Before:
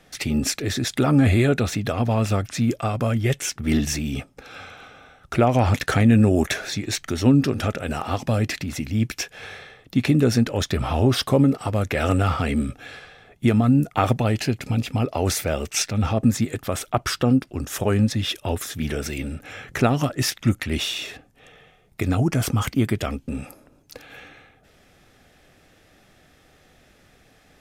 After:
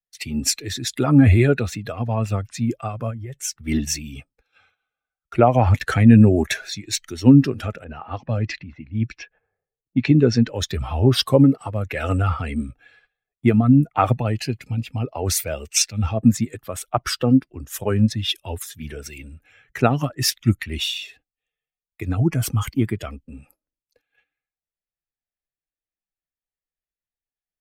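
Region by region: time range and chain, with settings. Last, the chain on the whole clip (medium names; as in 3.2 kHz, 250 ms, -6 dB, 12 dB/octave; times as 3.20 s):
3.10–3.58 s: peaking EQ 2.8 kHz -5 dB 0.88 oct + compression 16:1, threshold -22 dBFS
7.84–10.49 s: level-controlled noise filter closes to 500 Hz, open at -18 dBFS + low-pass 6.8 kHz 24 dB/octave
whole clip: expander on every frequency bin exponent 1.5; gate -53 dBFS, range -12 dB; three bands expanded up and down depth 40%; trim +3.5 dB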